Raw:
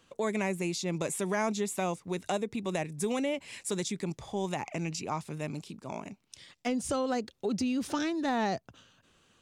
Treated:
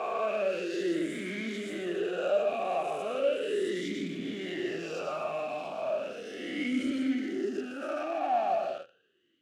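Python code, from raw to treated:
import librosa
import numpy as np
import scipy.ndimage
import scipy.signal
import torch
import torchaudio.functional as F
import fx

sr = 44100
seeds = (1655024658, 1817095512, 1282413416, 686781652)

p1 = fx.spec_swells(x, sr, rise_s=1.47)
p2 = fx.fixed_phaser(p1, sr, hz=700.0, stages=8, at=(6.98, 8.5))
p3 = fx.rev_plate(p2, sr, seeds[0], rt60_s=0.67, hf_ratio=0.95, predelay_ms=90, drr_db=4.5)
p4 = fx.fuzz(p3, sr, gain_db=49.0, gate_db=-43.0)
p5 = p3 + (p4 * 10.0 ** (-10.5 / 20.0))
y = fx.vowel_sweep(p5, sr, vowels='a-i', hz=0.36)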